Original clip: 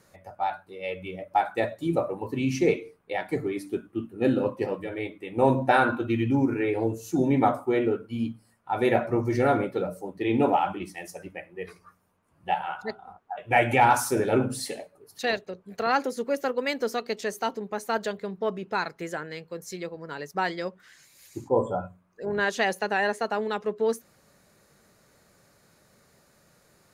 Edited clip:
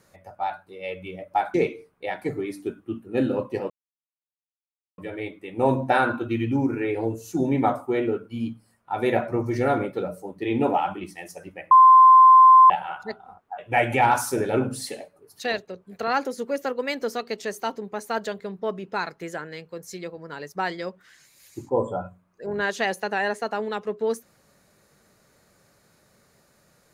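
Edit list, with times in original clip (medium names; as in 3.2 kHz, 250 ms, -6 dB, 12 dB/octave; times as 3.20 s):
1.54–2.61 s: delete
4.77 s: insert silence 1.28 s
11.50–12.49 s: bleep 1.04 kHz -8 dBFS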